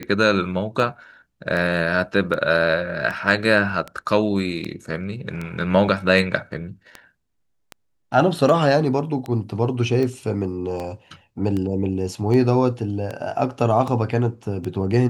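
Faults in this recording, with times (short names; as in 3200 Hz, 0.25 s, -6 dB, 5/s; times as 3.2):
tick 78 rpm -16 dBFS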